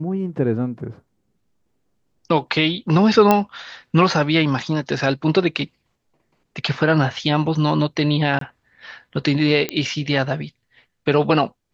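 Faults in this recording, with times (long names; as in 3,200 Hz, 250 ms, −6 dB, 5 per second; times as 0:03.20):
0:03.31: click −2 dBFS
0:08.39–0:08.41: drop-out 23 ms
0:09.69: click −7 dBFS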